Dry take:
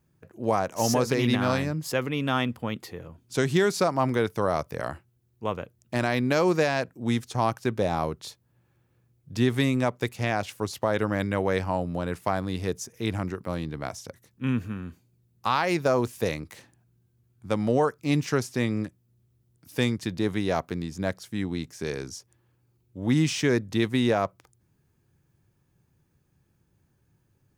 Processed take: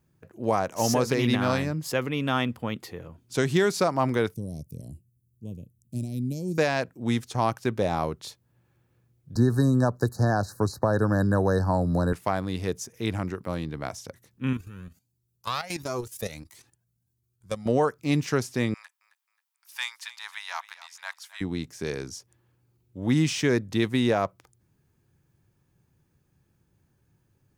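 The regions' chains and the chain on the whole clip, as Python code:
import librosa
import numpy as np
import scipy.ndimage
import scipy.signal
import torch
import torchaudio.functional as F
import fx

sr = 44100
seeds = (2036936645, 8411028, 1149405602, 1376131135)

y = fx.chain(x, sr, fx.cheby1_bandstop(low_hz=190.0, high_hz=9200.0, order=2),
    fx.peak_eq(hz=2500.0, db=7.5, octaves=0.6), at=(4.34, 6.58))
y = fx.chain(y, sr, fx.brickwall_bandstop(low_hz=1800.0, high_hz=3800.0),
    fx.low_shelf(hz=150.0, db=9.5),
    fx.band_squash(depth_pct=70), at=(9.35, 12.13))
y = fx.chain(y, sr, fx.bass_treble(bass_db=1, treble_db=11),
    fx.level_steps(step_db=12),
    fx.comb_cascade(direction='rising', hz=1.5), at=(14.53, 17.66))
y = fx.chain(y, sr, fx.ellip_highpass(hz=900.0, order=4, stop_db=60),
    fx.echo_feedback(ms=267, feedback_pct=32, wet_db=-16.5), at=(18.74, 21.41))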